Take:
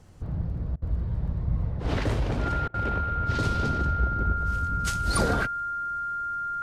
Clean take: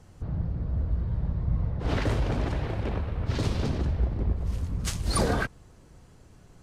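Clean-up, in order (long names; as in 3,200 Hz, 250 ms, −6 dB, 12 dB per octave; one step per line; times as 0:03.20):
click removal
notch filter 1,400 Hz, Q 30
repair the gap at 0:00.76/0:02.68, 59 ms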